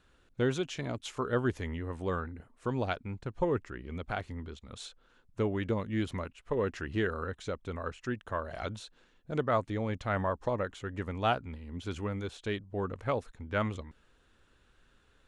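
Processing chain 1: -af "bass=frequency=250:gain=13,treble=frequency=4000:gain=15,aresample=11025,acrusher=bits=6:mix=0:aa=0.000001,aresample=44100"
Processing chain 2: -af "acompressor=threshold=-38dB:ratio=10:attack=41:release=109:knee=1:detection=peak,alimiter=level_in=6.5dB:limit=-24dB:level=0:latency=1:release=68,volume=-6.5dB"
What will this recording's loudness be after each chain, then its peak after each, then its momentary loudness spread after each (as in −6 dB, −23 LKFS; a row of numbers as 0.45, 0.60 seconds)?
−28.0, −42.0 LKFS; −11.0, −30.5 dBFS; 8, 5 LU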